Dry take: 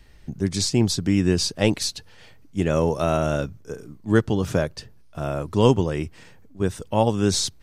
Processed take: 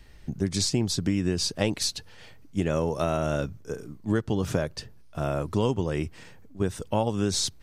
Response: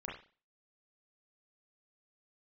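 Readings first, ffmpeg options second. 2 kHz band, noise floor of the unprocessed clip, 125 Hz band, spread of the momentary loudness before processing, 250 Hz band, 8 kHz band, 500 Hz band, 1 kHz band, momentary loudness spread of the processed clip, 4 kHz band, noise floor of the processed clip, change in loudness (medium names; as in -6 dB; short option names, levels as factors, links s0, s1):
-5.0 dB, -48 dBFS, -5.0 dB, 16 LU, -5.0 dB, -3.0 dB, -5.5 dB, -5.0 dB, 10 LU, -3.0 dB, -48 dBFS, -5.0 dB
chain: -af "acompressor=threshold=0.0891:ratio=6"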